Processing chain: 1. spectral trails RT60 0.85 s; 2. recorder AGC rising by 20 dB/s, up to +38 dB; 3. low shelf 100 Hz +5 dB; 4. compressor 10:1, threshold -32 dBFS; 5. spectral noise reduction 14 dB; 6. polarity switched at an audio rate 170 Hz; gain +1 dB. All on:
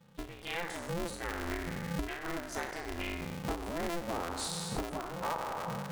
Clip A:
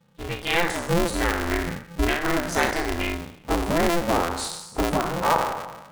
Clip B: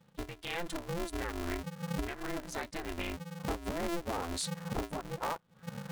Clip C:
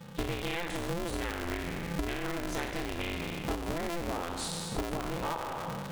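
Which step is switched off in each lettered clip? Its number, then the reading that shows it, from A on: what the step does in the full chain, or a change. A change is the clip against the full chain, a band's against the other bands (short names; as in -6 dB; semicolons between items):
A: 4, crest factor change -2.0 dB; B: 1, crest factor change -4.5 dB; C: 5, 1 kHz band -2.0 dB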